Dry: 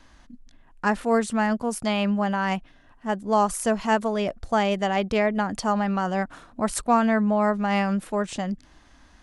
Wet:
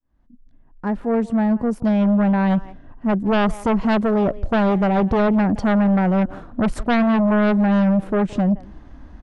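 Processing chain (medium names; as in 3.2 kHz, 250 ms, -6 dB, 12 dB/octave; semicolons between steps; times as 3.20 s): fade-in on the opening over 2.59 s; low-pass 1.3 kHz 6 dB/octave; tilt shelf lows +6 dB, about 640 Hz; speakerphone echo 170 ms, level -21 dB; in parallel at -6 dB: sine folder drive 10 dB, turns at -11 dBFS; on the sum: trim -1.5 dB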